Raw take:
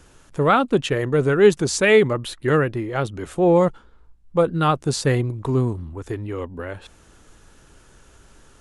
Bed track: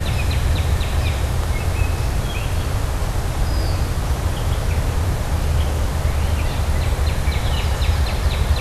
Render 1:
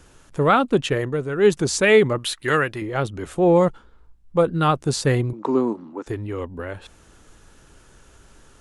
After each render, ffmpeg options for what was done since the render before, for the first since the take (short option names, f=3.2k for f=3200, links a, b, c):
-filter_complex "[0:a]asettb=1/sr,asplit=3[a][b][c];[a]atrim=end=2.184[d];[b]atrim=start=2.18:end=2.82,asetpts=PTS-STARTPTS,afade=t=in:d=0.004:c=qsin,afade=t=out:st=0.636:d=0.004:c=qsin,tiltshelf=f=800:g=-7[e];[c]atrim=start=2.816[f];[d][e]acrossfade=d=0.004:c1=hsin:c2=qsin[g];[g][f]acrossfade=d=0.004:c1=qsin:c2=hsin,asettb=1/sr,asplit=3[h][i][j];[h]atrim=end=5.334[k];[i]atrim=start=5.33:end=6.07,asetpts=PTS-STARTPTS,afade=t=in:d=0.004:c=qsin,afade=t=out:st=0.736:d=0.004:c=qsin,highpass=f=220:w=0.5412,highpass=f=220:w=1.3066,equalizer=f=220:t=q:w=4:g=5,equalizer=f=320:t=q:w=4:g=6,equalizer=f=540:t=q:w=4:g=5,equalizer=f=880:t=q:w=4:g=7,equalizer=f=1.3k:t=q:w=4:g=4,equalizer=f=3.3k:t=q:w=4:g=-4,lowpass=f=6.7k:w=0.5412,lowpass=f=6.7k:w=1.3066[l];[j]atrim=start=6.066[m];[k][l]acrossfade=d=0.004:c1=hsin:c2=qsin[n];[n][m]acrossfade=d=0.004:c1=qsin:c2=hsin,asplit=3[o][p][q];[o]atrim=end=1.24,asetpts=PTS-STARTPTS,afade=t=out:st=0.97:d=0.27:silence=0.354813[r];[p]atrim=start=1.24:end=1.29,asetpts=PTS-STARTPTS,volume=-9dB[s];[q]atrim=start=1.29,asetpts=PTS-STARTPTS,afade=t=in:d=0.27:silence=0.354813[t];[r][s][t]concat=n=3:v=0:a=1"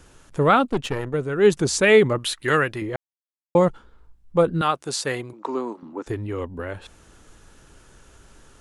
-filter_complex "[0:a]asettb=1/sr,asplit=3[a][b][c];[a]atrim=end=0.674[d];[b]atrim=start=0.67:end=1.14,asetpts=PTS-STARTPTS,afade=t=in:d=0.004:c=qsin,afade=t=out:st=0.466:d=0.004:c=qsin,aeval=exprs='(tanh(7.08*val(0)+0.75)-tanh(0.75))/7.08':c=same[e];[c]atrim=start=1.136[f];[d][e]acrossfade=d=0.004:c1=hsin:c2=qsin[g];[g][f]acrossfade=d=0.004:c1=qsin:c2=hsin,asettb=1/sr,asplit=3[h][i][j];[h]atrim=end=4.614[k];[i]atrim=start=4.61:end=5.83,asetpts=PTS-STARTPTS,afade=t=in:d=0.004:c=qsin,afade=t=out:st=1.216:d=0.004:c=qsin,highpass=f=750:p=1[l];[j]atrim=start=5.826[m];[k][l]acrossfade=d=0.004:c1=hsin:c2=qsin[n];[n][m]acrossfade=d=0.004:c1=qsin:c2=hsin,asplit=3[o][p][q];[o]atrim=end=2.96,asetpts=PTS-STARTPTS,afade=t=out:st=2.956:d=0.004:c=hsin[r];[p]atrim=start=2.96:end=3.55,asetpts=PTS-STARTPTS,volume=0[s];[q]atrim=start=3.55,asetpts=PTS-STARTPTS,afade=t=in:d=0.004:c=hsin[t];[r][s][t]concat=n=3:v=0:a=1"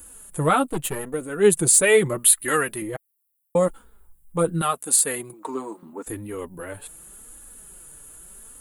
-af "aexciter=amount=11.5:drive=8.9:freq=8.3k,flanger=delay=3.4:depth=3.7:regen=-5:speed=0.81:shape=triangular"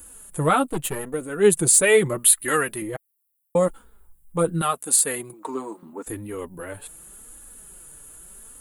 -af anull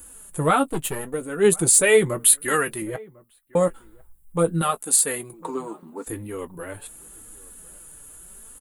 -filter_complex "[0:a]asplit=2[a][b];[b]adelay=18,volume=-13.5dB[c];[a][c]amix=inputs=2:normalize=0,asplit=2[d][e];[e]adelay=1050,volume=-24dB,highshelf=f=4k:g=-23.6[f];[d][f]amix=inputs=2:normalize=0"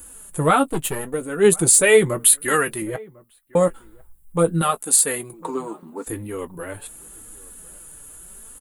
-af "volume=2.5dB,alimiter=limit=-2dB:level=0:latency=1"